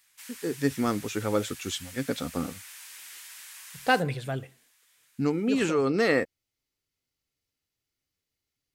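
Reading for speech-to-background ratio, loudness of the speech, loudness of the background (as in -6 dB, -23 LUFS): 15.0 dB, -28.5 LUFS, -43.5 LUFS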